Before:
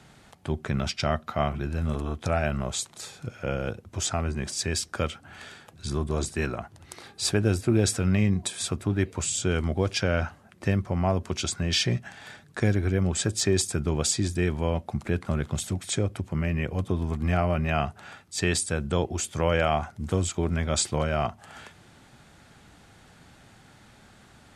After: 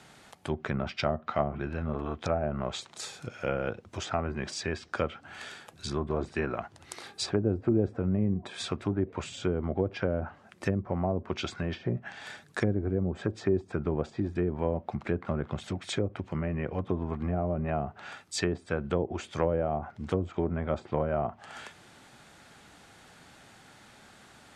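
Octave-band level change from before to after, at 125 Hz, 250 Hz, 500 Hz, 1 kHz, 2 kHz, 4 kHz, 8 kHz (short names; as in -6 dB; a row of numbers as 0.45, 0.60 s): -6.0, -3.0, -1.5, -3.5, -6.0, -8.5, -15.0 dB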